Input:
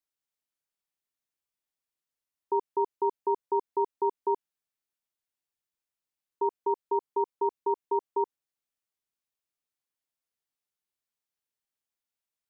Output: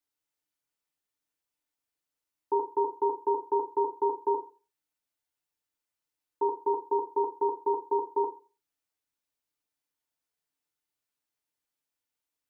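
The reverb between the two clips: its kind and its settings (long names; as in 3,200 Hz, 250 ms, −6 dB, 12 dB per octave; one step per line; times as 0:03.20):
feedback delay network reverb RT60 0.34 s, low-frequency decay 0.95×, high-frequency decay 0.65×, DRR 1 dB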